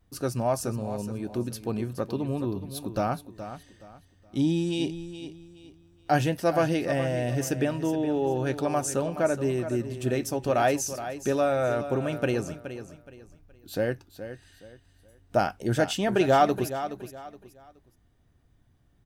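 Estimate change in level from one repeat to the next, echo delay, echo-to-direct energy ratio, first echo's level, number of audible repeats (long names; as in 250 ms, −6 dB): −10.5 dB, 421 ms, −11.0 dB, −11.5 dB, 3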